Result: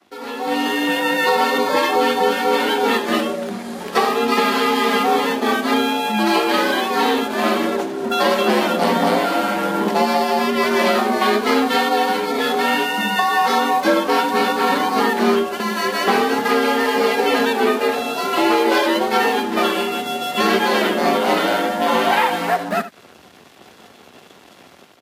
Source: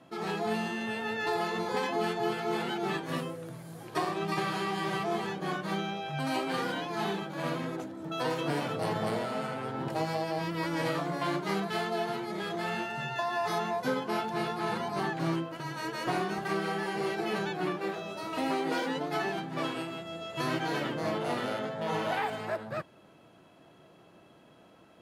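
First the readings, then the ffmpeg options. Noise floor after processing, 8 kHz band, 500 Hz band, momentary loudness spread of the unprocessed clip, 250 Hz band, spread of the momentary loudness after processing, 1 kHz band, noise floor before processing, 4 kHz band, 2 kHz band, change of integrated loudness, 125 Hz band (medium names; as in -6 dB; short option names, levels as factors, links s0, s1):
-46 dBFS, +16.5 dB, +14.5 dB, 5 LU, +13.5 dB, 4 LU, +15.5 dB, -58 dBFS, +16.5 dB, +15.5 dB, +15.0 dB, +2.0 dB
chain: -filter_complex "[0:a]asplit=2[s0][s1];[s1]acompressor=threshold=0.00891:ratio=6,volume=0.944[s2];[s0][s2]amix=inputs=2:normalize=0,lowpass=4000,aeval=exprs='sgn(val(0))*max(abs(val(0))-0.00251,0)':c=same,aemphasis=mode=production:type=50fm,asplit=2[s3][s4];[s4]aecho=0:1:76:0.2[s5];[s3][s5]amix=inputs=2:normalize=0,afreqshift=68,dynaudnorm=f=350:g=3:m=5.01" -ar 44100 -c:a libvorbis -b:a 48k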